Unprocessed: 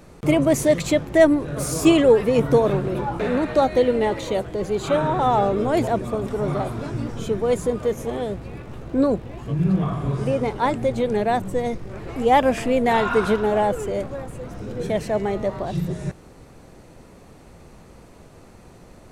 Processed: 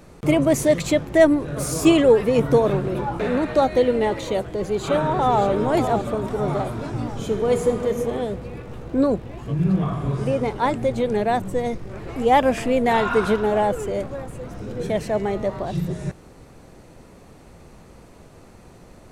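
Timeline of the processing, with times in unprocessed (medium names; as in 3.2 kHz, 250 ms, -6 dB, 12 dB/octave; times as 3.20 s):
4.29–5.43 s: echo throw 580 ms, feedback 50%, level -8.5 dB
7.12–7.89 s: reverb throw, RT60 2.4 s, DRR 5 dB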